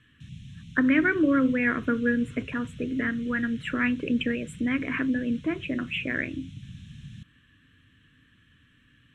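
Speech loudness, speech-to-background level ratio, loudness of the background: -26.5 LUFS, 18.0 dB, -44.5 LUFS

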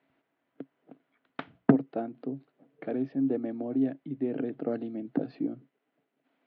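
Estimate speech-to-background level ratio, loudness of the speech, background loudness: 14.0 dB, -31.5 LUFS, -45.5 LUFS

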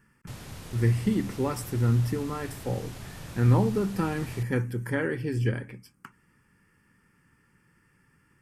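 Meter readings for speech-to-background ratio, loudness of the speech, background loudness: 14.5 dB, -28.0 LUFS, -42.5 LUFS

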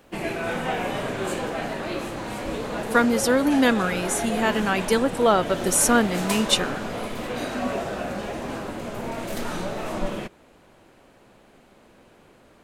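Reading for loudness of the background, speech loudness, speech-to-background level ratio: -29.5 LUFS, -21.5 LUFS, 8.0 dB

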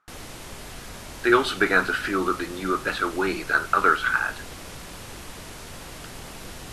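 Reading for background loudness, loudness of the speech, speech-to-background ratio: -39.0 LUFS, -23.0 LUFS, 16.0 dB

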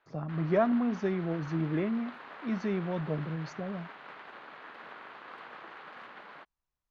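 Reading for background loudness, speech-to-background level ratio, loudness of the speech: -47.0 LUFS, 15.0 dB, -32.0 LUFS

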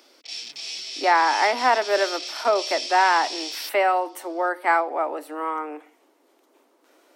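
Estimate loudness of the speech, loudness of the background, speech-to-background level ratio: -22.5 LUFS, -30.5 LUFS, 8.0 dB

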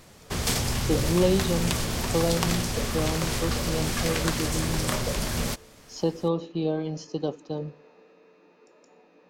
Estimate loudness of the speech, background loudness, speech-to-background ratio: -29.5 LUFS, -28.0 LUFS, -1.5 dB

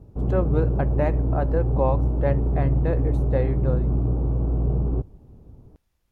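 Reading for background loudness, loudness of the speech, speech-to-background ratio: -24.0 LUFS, -28.5 LUFS, -4.5 dB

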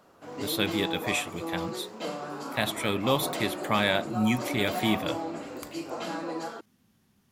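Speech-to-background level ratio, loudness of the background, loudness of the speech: 6.5 dB, -35.5 LUFS, -29.0 LUFS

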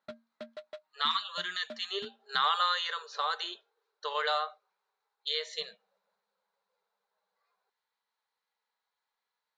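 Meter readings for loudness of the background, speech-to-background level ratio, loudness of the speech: -50.5 LUFS, 18.0 dB, -32.5 LUFS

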